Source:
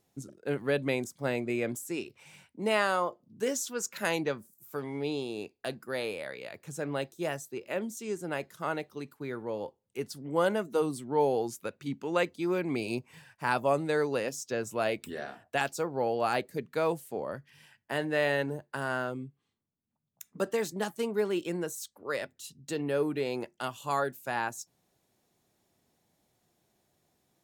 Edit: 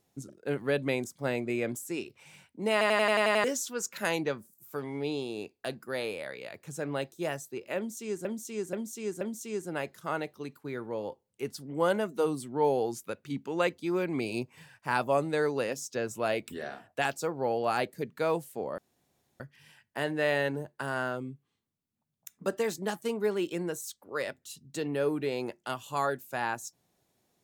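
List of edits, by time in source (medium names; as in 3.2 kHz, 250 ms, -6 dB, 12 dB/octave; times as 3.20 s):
2.72 s: stutter in place 0.09 s, 8 plays
7.77–8.25 s: loop, 4 plays
17.34 s: insert room tone 0.62 s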